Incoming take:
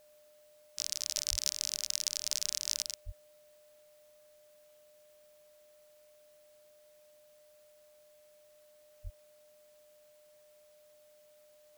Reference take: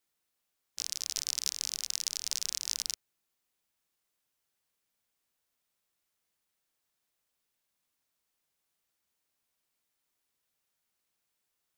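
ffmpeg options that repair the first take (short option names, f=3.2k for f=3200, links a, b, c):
-filter_complex "[0:a]bandreject=f=600:w=30,asplit=3[a][b][c];[a]afade=t=out:st=1.3:d=0.02[d];[b]highpass=f=140:w=0.5412,highpass=f=140:w=1.3066,afade=t=in:st=1.3:d=0.02,afade=t=out:st=1.42:d=0.02[e];[c]afade=t=in:st=1.42:d=0.02[f];[d][e][f]amix=inputs=3:normalize=0,asplit=3[g][h][i];[g]afade=t=out:st=3.05:d=0.02[j];[h]highpass=f=140:w=0.5412,highpass=f=140:w=1.3066,afade=t=in:st=3.05:d=0.02,afade=t=out:st=3.17:d=0.02[k];[i]afade=t=in:st=3.17:d=0.02[l];[j][k][l]amix=inputs=3:normalize=0,asplit=3[m][n][o];[m]afade=t=out:st=9.03:d=0.02[p];[n]highpass=f=140:w=0.5412,highpass=f=140:w=1.3066,afade=t=in:st=9.03:d=0.02,afade=t=out:st=9.15:d=0.02[q];[o]afade=t=in:st=9.15:d=0.02[r];[p][q][r]amix=inputs=3:normalize=0,agate=range=-21dB:threshold=-54dB,asetnsamples=n=441:p=0,asendcmd='2.82 volume volume 4.5dB',volume=0dB"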